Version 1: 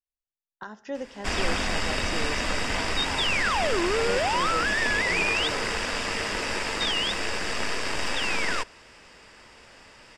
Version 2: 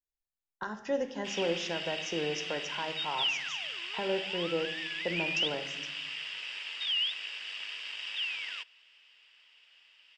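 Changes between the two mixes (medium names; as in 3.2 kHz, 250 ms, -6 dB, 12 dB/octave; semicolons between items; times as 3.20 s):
speech: send +10.5 dB; background: add band-pass filter 3 kHz, Q 5.5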